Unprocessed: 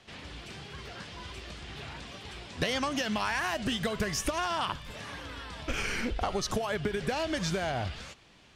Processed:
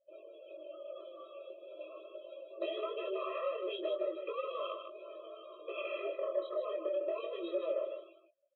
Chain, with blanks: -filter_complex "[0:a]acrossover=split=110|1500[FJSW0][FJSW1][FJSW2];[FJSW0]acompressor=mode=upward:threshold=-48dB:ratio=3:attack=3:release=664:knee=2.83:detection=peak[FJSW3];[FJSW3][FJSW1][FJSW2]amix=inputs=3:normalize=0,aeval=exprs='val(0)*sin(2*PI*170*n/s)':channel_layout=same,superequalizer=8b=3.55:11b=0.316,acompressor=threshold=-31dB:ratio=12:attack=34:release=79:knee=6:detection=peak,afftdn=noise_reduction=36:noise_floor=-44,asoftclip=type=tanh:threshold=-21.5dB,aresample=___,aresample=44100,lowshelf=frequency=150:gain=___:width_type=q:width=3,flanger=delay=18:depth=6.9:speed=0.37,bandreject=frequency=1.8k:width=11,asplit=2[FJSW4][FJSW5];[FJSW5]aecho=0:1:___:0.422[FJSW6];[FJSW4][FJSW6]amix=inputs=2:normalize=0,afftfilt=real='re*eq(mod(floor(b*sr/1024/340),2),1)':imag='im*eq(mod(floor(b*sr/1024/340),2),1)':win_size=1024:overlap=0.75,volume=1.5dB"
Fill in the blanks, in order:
8000, -8.5, 155